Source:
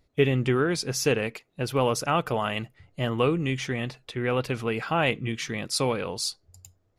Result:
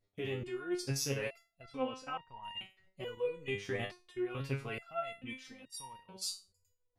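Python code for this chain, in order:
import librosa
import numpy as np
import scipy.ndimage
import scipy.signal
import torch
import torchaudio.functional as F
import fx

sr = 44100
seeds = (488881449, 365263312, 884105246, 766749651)

y = fx.lowpass(x, sr, hz=fx.line((1.62, 4600.0), (2.42, 2400.0)), slope=12, at=(1.62, 2.42), fade=0.02)
y = fx.level_steps(y, sr, step_db=15)
y = fx.resonator_held(y, sr, hz=2.3, low_hz=100.0, high_hz=930.0)
y = y * 10.0 ** (6.0 / 20.0)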